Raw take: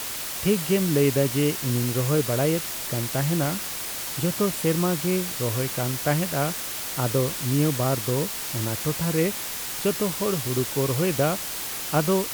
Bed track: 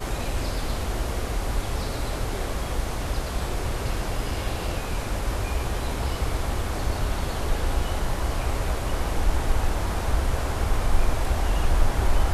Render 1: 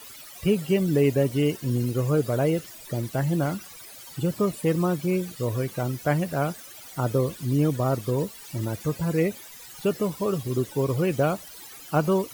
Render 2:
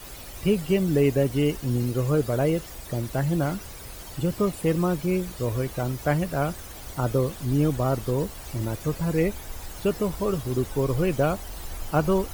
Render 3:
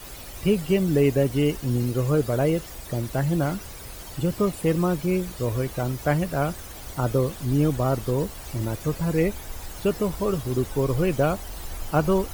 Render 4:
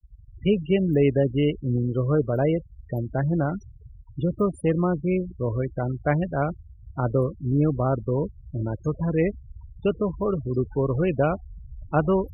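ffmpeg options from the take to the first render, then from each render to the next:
-af "afftdn=nr=17:nf=-32"
-filter_complex "[1:a]volume=-15.5dB[a];[0:a][a]amix=inputs=2:normalize=0"
-af "volume=1dB"
-af "afftfilt=real='re*gte(hypot(re,im),0.0398)':imag='im*gte(hypot(re,im),0.0398)':win_size=1024:overlap=0.75,highpass=42"

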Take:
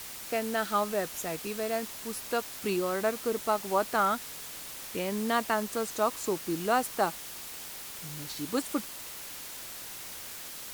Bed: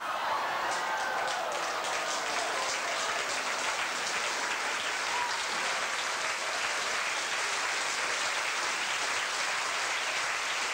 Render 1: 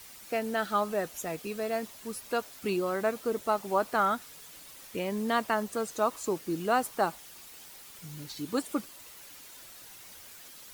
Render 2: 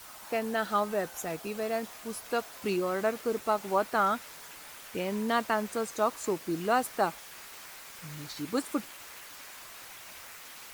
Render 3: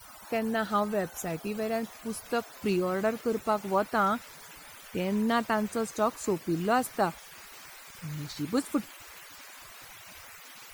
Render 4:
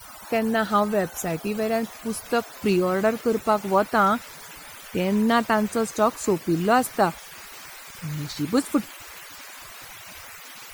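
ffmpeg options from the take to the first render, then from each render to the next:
-af "afftdn=nr=9:nf=-43"
-filter_complex "[1:a]volume=-19.5dB[a];[0:a][a]amix=inputs=2:normalize=0"
-af "afftfilt=real='re*gte(hypot(re,im),0.00316)':imag='im*gte(hypot(re,im),0.00316)':win_size=1024:overlap=0.75,bass=f=250:g=8,treble=f=4k:g=1"
-af "volume=6.5dB"

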